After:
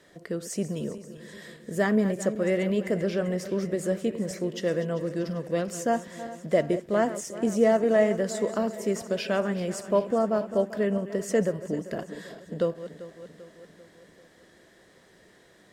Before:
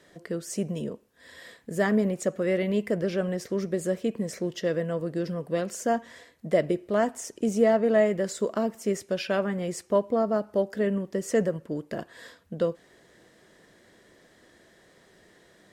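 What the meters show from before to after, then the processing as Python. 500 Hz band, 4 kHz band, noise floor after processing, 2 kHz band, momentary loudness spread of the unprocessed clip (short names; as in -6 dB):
+0.5 dB, +0.5 dB, -58 dBFS, +0.5 dB, 12 LU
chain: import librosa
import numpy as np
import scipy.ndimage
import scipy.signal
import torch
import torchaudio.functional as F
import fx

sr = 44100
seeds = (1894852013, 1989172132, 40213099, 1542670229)

y = fx.reverse_delay_fb(x, sr, ms=196, feedback_pct=72, wet_db=-13.5)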